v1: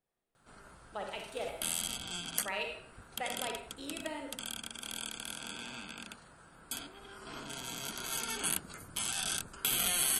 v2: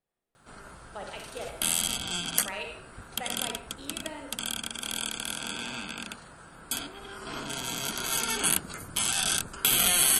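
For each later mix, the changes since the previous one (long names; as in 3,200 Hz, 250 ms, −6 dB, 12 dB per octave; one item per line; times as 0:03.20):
background +8.0 dB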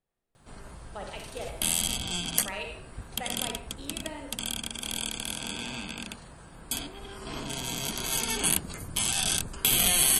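background: add parametric band 1,400 Hz −9 dB 0.33 octaves
master: add low-shelf EQ 120 Hz +9.5 dB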